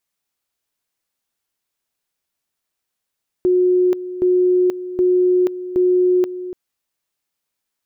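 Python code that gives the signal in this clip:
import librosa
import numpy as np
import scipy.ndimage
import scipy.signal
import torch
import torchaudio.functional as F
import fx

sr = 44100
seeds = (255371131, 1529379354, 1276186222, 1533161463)

y = fx.two_level_tone(sr, hz=363.0, level_db=-11.5, drop_db=13.5, high_s=0.48, low_s=0.29, rounds=4)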